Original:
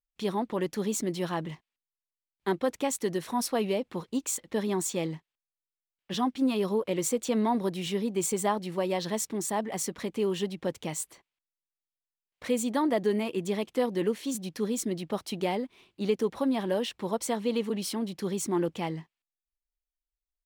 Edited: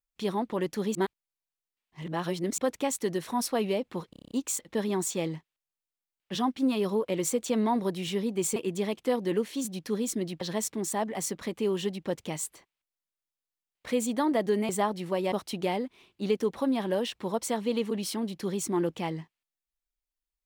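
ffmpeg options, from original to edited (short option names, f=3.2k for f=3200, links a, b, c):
-filter_complex "[0:a]asplit=14[a][b][c][d][e][f][g][h][i][j][k][l][m][n];[a]atrim=end=0.952[o];[b]atrim=start=0.948:end=2.582,asetpts=PTS-STARTPTS,areverse[p];[c]atrim=start=2.578:end=4.132[q];[d]atrim=start=4.098:end=4.132[r];[e]atrim=start=4.098:end=4.132[s];[f]atrim=start=4.098:end=4.132[t];[g]atrim=start=4.098:end=4.132[u];[h]atrim=start=4.098:end=4.132[v];[i]atrim=start=4.098:end=4.132[w];[j]atrim=start=4.098:end=8.352[x];[k]atrim=start=13.258:end=15.112[y];[l]atrim=start=8.978:end=13.262[z];[m]atrim=start=8.348:end=8.982[aa];[n]atrim=start=15.108[ab];[o][p]acrossfade=d=0.004:c1=hsin:c2=hsin[ac];[ac][q]acrossfade=d=0.004:c1=hsin:c2=hsin[ad];[ad][r]acrossfade=d=0.004:c1=hsin:c2=hsin[ae];[ae][s]acrossfade=d=0.004:c1=hsin:c2=hsin[af];[af][t]acrossfade=d=0.004:c1=hsin:c2=hsin[ag];[ag][u]acrossfade=d=0.004:c1=hsin:c2=hsin[ah];[ah][v]acrossfade=d=0.004:c1=hsin:c2=hsin[ai];[ai][w]acrossfade=d=0.004:c1=hsin:c2=hsin[aj];[aj][x]acrossfade=d=0.004:c1=hsin:c2=hsin[ak];[ak][y]acrossfade=d=0.004:c1=hsin:c2=hsin[al];[al][z]acrossfade=d=0.004:c1=hsin:c2=hsin[am];[am][aa]acrossfade=d=0.004:c1=hsin:c2=hsin[an];[an][ab]acrossfade=d=0.004:c1=hsin:c2=hsin"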